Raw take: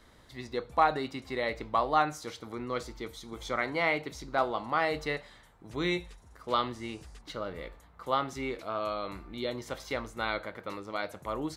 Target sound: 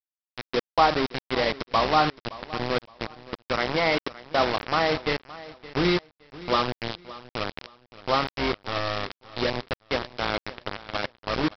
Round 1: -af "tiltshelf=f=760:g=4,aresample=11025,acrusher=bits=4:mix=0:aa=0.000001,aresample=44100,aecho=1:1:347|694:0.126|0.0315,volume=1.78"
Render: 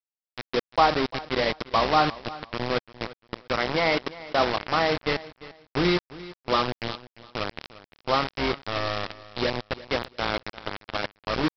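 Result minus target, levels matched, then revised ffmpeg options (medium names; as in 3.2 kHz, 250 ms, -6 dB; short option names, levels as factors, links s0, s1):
echo 221 ms early
-af "tiltshelf=f=760:g=4,aresample=11025,acrusher=bits=4:mix=0:aa=0.000001,aresample=44100,aecho=1:1:568|1136:0.126|0.0315,volume=1.78"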